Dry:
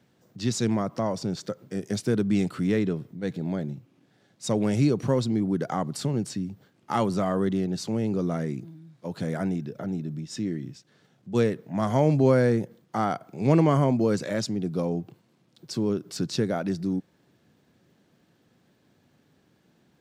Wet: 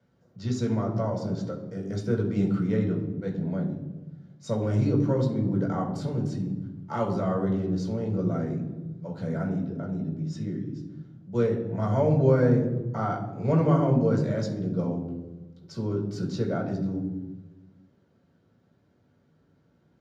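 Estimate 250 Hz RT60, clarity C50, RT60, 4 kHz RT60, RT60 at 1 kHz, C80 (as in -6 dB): 1.5 s, 7.0 dB, 1.1 s, 0.75 s, 1.0 s, 9.5 dB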